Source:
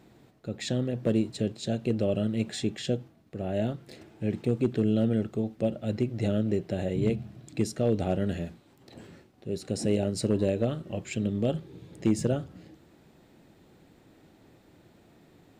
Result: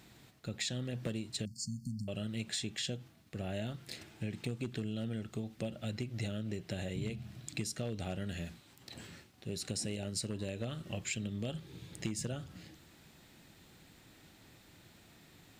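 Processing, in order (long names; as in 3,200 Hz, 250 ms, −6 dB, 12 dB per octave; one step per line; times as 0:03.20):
guitar amp tone stack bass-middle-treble 5-5-5
downward compressor 6 to 1, threshold −48 dBFS, peak gain reduction 11.5 dB
0:01.45–0:02.08: linear-phase brick-wall band-stop 280–4,300 Hz
level +13.5 dB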